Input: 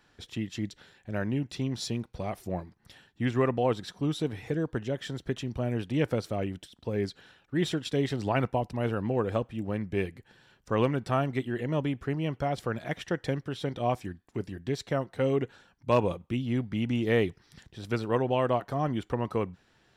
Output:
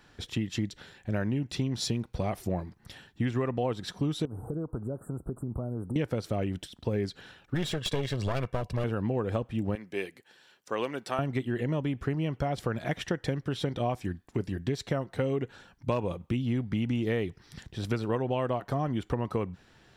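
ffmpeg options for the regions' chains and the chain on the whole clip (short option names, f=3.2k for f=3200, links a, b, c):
-filter_complex "[0:a]asettb=1/sr,asplit=3[a][b][c];[a]atrim=end=4.254[d];[b]atrim=start=4.25:end=5.96,asetpts=PTS-STARTPTS,afade=t=in:d=0.004:c=qsin,afade=t=out:st=1.706:d=0.004:c=qsin,acompressor=threshold=-37dB:ratio=5:attack=3.2:release=140:knee=1:detection=peak,asuperstop=centerf=3500:order=20:qfactor=0.52[e];[c]atrim=start=5.956[f];[d][e]acrossfade=d=0.004:c1=hsin:c2=qsin[g];[g][f]acrossfade=d=0.004:c1=qsin:c2=hsin,asettb=1/sr,asplit=3[h][i][j];[h]atrim=end=7.544[k];[i]atrim=start=7.54:end=8.84,asetpts=PTS-STARTPTS,afade=t=in:d=0.004:c=qsin,afade=t=out:st=1.296:d=0.004:c=qsin,equalizer=f=3.2k:w=1:g=2.5,aecho=1:1:1.8:0.66,atrim=end_sample=57330,aeval=exprs='clip(val(0),-1,0.0224)':c=same[l];[j]atrim=start=8.836[m];[k][l]acrossfade=d=0.004:c1=hsin:c2=qsin[n];[n][m]acrossfade=d=0.004:c1=qsin:c2=hsin,asettb=1/sr,asplit=3[o][p][q];[o]atrim=end=9.754[r];[p]atrim=start=9.75:end=11.19,asetpts=PTS-STARTPTS,afade=t=in:d=0.004:c=qsin,afade=t=out:st=1.436:d=0.004:c=qsin,highpass=460,equalizer=f=910:w=0.39:g=-6[s];[q]atrim=start=11.186[t];[r][s]acrossfade=d=0.004:c1=hsin:c2=qsin[u];[u][t]acrossfade=d=0.004:c1=qsin:c2=hsin,lowshelf=f=210:g=3.5,acompressor=threshold=-31dB:ratio=6,volume=5dB"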